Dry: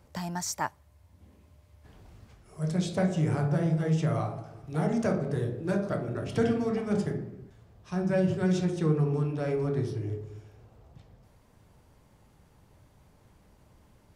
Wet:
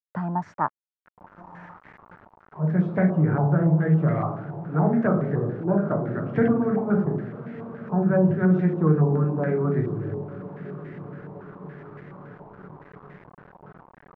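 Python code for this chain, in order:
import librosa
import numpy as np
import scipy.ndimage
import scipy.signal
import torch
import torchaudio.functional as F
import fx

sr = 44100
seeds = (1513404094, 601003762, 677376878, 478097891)

y = scipy.signal.sosfilt(scipy.signal.butter(4, 140.0, 'highpass', fs=sr, output='sos'), x)
y = fx.tilt_eq(y, sr, slope=-3.0)
y = fx.echo_diffused(y, sr, ms=1119, feedback_pct=60, wet_db=-16.0)
y = np.where(np.abs(y) >= 10.0 ** (-45.5 / 20.0), y, 0.0)
y = fx.filter_held_lowpass(y, sr, hz=7.1, low_hz=910.0, high_hz=1900.0)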